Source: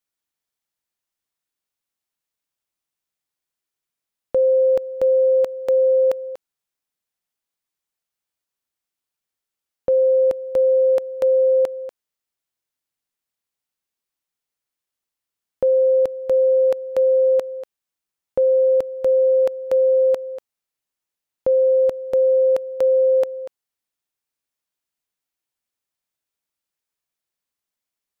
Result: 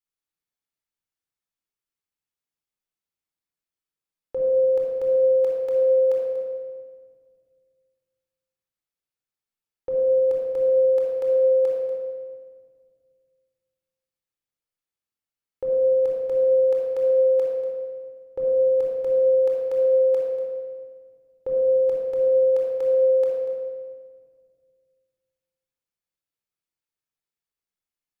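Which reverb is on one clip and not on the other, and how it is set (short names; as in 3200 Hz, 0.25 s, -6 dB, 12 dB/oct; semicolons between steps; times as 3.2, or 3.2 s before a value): shoebox room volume 2600 m³, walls mixed, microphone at 4.1 m; gain -12.5 dB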